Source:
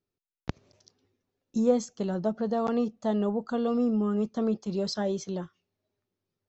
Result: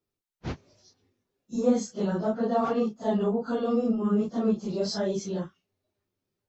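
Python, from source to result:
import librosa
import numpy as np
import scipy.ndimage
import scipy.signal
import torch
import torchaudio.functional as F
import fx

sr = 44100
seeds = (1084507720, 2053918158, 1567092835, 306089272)

y = fx.phase_scramble(x, sr, seeds[0], window_ms=100)
y = fx.dynamic_eq(y, sr, hz=1300.0, q=0.87, threshold_db=-42.0, ratio=4.0, max_db=4, at=(1.95, 3.0))
y = F.gain(torch.from_numpy(y), 1.5).numpy()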